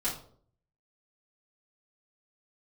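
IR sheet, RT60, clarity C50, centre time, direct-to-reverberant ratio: 0.55 s, 7.0 dB, 28 ms, −9.0 dB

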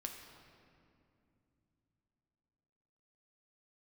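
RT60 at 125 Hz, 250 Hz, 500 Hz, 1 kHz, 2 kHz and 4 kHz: 4.3, 4.1, 3.0, 2.4, 2.1, 1.6 seconds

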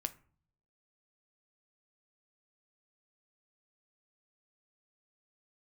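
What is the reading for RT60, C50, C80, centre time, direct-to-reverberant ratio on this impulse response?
0.45 s, 18.0 dB, 23.0 dB, 4 ms, 9.5 dB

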